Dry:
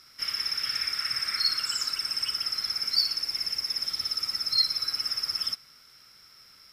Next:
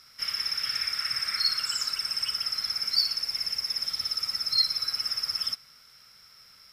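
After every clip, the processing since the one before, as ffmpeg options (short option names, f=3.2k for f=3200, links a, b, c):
-af "equalizer=f=320:w=5.3:g=-13.5"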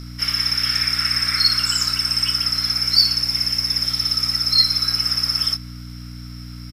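-filter_complex "[0:a]aeval=exprs='val(0)+0.00891*(sin(2*PI*60*n/s)+sin(2*PI*2*60*n/s)/2+sin(2*PI*3*60*n/s)/3+sin(2*PI*4*60*n/s)/4+sin(2*PI*5*60*n/s)/5)':c=same,asplit=2[a][b];[b]adelay=24,volume=-9dB[c];[a][c]amix=inputs=2:normalize=0,volume=9dB"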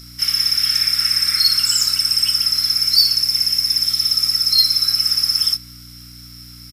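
-af "acontrast=31,crystalizer=i=4.5:c=0,aresample=32000,aresample=44100,volume=-13dB"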